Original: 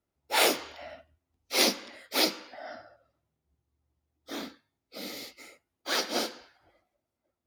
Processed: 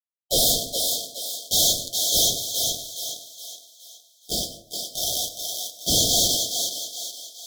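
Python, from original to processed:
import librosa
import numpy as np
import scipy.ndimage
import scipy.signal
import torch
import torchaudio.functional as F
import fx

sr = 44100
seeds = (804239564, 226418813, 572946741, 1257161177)

y = fx.tilt_shelf(x, sr, db=-5.5, hz=970.0)
y = fx.leveller(y, sr, passes=2)
y = fx.fuzz(y, sr, gain_db=27.0, gate_db=-35.0)
y = y * np.sin(2.0 * np.pi * 1400.0 * np.arange(len(y)) / sr)
y = fx.brickwall_bandstop(y, sr, low_hz=750.0, high_hz=3100.0)
y = fx.echo_thinned(y, sr, ms=418, feedback_pct=44, hz=500.0, wet_db=-4.5)
y = fx.rev_plate(y, sr, seeds[0], rt60_s=0.66, hf_ratio=0.5, predelay_ms=85, drr_db=11.0)
y = fx.env_flatten(y, sr, amount_pct=50, at=(5.94, 6.34), fade=0.02)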